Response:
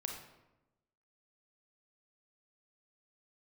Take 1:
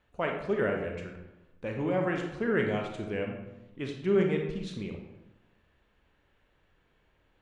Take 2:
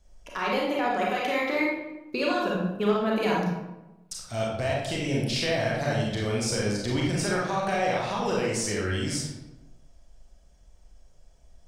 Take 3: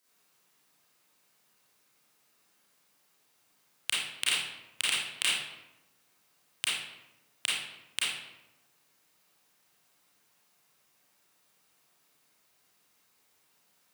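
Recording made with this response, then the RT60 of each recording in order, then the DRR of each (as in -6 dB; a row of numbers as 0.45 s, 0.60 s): 1; 1.0 s, 1.0 s, 1.0 s; 1.5 dB, -4.5 dB, -8.5 dB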